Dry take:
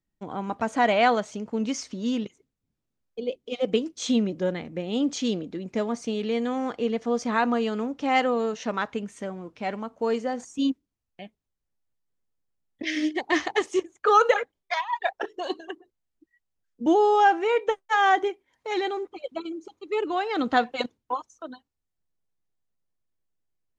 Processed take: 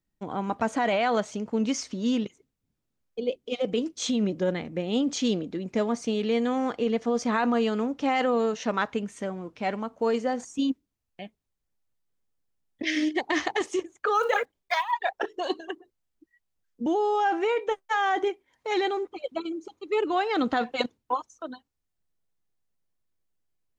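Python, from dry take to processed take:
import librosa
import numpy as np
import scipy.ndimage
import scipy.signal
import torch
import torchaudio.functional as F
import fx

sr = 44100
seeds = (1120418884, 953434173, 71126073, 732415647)

p1 = fx.block_float(x, sr, bits=7, at=(14.15, 14.92))
p2 = fx.over_compress(p1, sr, threshold_db=-24.0, ratio=-0.5)
p3 = p1 + F.gain(torch.from_numpy(p2), 3.0).numpy()
y = F.gain(torch.from_numpy(p3), -7.5).numpy()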